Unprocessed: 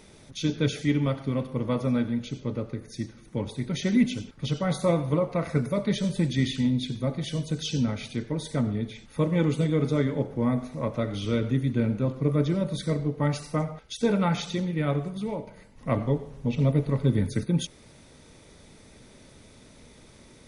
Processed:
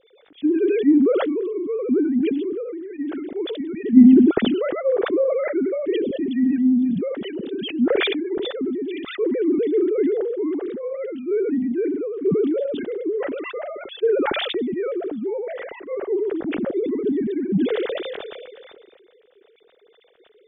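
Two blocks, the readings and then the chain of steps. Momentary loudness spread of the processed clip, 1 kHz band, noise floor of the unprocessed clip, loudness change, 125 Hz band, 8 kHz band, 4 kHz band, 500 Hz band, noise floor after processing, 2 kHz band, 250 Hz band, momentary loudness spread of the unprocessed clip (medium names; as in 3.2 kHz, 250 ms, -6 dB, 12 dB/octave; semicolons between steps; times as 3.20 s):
12 LU, +1.0 dB, -53 dBFS, +6.0 dB, -13.0 dB, under -35 dB, +3.5 dB, +9.0 dB, -56 dBFS, +5.0 dB, +7.5 dB, 9 LU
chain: formants replaced by sine waves; bass shelf 240 Hz +7.5 dB; low-pass that closes with the level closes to 1.1 kHz, closed at -16 dBFS; fifteen-band graphic EQ 400 Hz +8 dB, 1 kHz -9 dB, 2.5 kHz -5 dB; decay stretcher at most 25 dB/s; trim -3.5 dB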